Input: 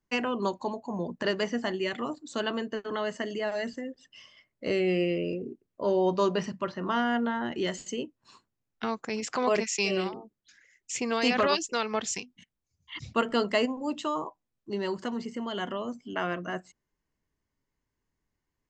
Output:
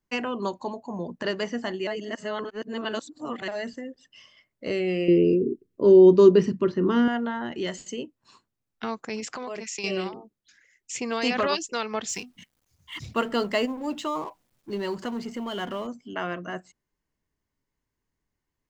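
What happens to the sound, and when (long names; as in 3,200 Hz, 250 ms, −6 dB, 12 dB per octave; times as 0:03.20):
0:01.87–0:03.48: reverse
0:05.08–0:07.08: low shelf with overshoot 510 Hz +8 dB, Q 3
0:09.24–0:09.84: downward compressor 12 to 1, threshold −30 dBFS
0:12.09–0:15.87: mu-law and A-law mismatch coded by mu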